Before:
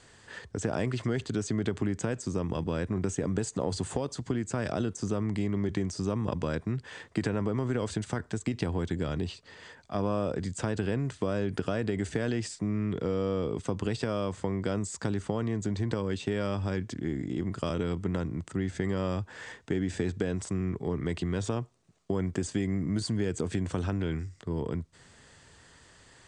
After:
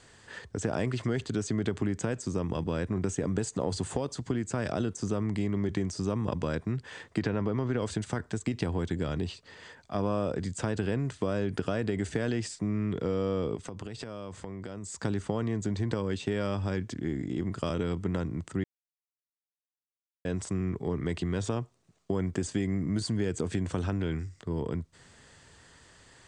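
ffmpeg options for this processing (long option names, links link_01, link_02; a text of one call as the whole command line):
ffmpeg -i in.wav -filter_complex "[0:a]asettb=1/sr,asplit=3[link_01][link_02][link_03];[link_01]atrim=end=7.194[link_04];[link_02]atrim=start=7.19:end=7.82,asetpts=PTS-STARTPTS,afade=type=in:duration=0.004:curve=qsin,afade=type=out:start_time=0.626:duration=0.004:curve=qsin,lowpass=frequency=5700:width=0.5412,lowpass=frequency=5700:width=1.3066[link_05];[link_03]atrim=start=7.816[link_06];[link_04][link_05]acrossfade=duration=0.004:curve1=hsin:curve2=qsin[link_07];[link_07][link_06]acrossfade=duration=0.004:curve1=qsin:curve2=hsin,asettb=1/sr,asplit=3[link_08][link_09][link_10];[link_08]atrim=end=13.554[link_11];[link_09]atrim=start=13.55:end=15.02,asetpts=PTS-STARTPTS,afade=type=in:duration=0.004:curve=qsin,afade=type=out:start_time=1.466:duration=0.004:curve=qsin,acompressor=threshold=-36dB:ratio=5:attack=3.2:release=140:knee=1:detection=peak[link_12];[link_10]atrim=start=15.016[link_13];[link_11][link_12]acrossfade=duration=0.004:curve1=hsin:curve2=qsin[link_14];[link_14][link_13]acrossfade=duration=0.004:curve1=qsin:curve2=hsin,asplit=3[link_15][link_16][link_17];[link_15]atrim=end=18.64,asetpts=PTS-STARTPTS,afade=type=out:start_time=18.636:duration=0.004:curve=hsin[link_18];[link_16]atrim=start=18.64:end=20.25,asetpts=PTS-STARTPTS,volume=0[link_19];[link_17]atrim=start=20.25,asetpts=PTS-STARTPTS,afade=type=in:duration=0.004:curve=hsin[link_20];[link_18][link_19][link_20]concat=n=3:v=0:a=1" out.wav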